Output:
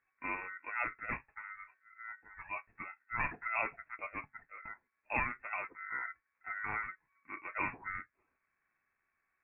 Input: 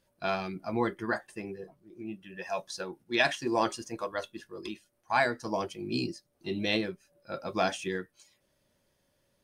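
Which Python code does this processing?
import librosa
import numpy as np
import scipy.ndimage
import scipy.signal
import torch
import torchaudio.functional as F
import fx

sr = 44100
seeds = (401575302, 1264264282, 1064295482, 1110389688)

y = x * np.sin(2.0 * np.pi * 910.0 * np.arange(len(x)) / sr)
y = fx.freq_invert(y, sr, carrier_hz=2600)
y = y * librosa.db_to_amplitude(-5.0)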